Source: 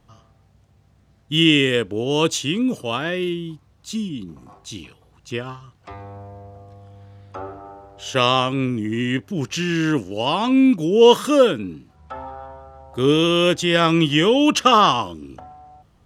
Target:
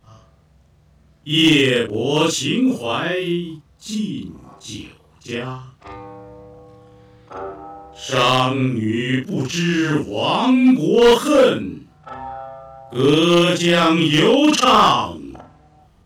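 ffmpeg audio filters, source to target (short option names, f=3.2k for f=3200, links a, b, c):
-af "afftfilt=real='re':imag='-im':win_size=4096:overlap=0.75,asoftclip=type=hard:threshold=-14dB,volume=7dB"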